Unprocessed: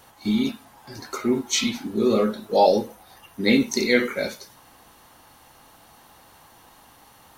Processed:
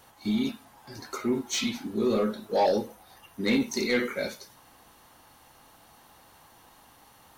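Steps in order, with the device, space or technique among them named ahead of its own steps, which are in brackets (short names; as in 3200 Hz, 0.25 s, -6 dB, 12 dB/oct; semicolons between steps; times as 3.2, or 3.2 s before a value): saturation between pre-emphasis and de-emphasis (high shelf 4100 Hz +11.5 dB; soft clip -12 dBFS, distortion -15 dB; high shelf 4100 Hz -11.5 dB); gain -4 dB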